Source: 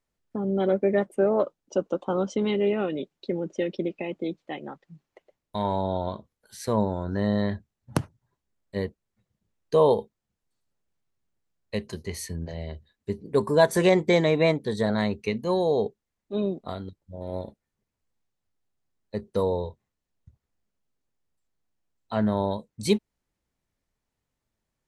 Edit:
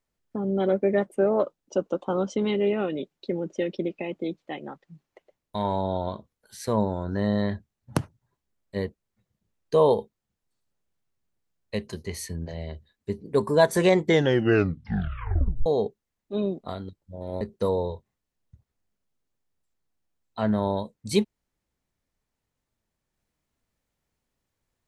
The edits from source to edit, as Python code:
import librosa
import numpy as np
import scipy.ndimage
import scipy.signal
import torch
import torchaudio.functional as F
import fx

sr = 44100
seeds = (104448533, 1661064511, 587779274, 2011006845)

y = fx.edit(x, sr, fx.tape_stop(start_s=14.02, length_s=1.64),
    fx.cut(start_s=17.41, length_s=1.74), tone=tone)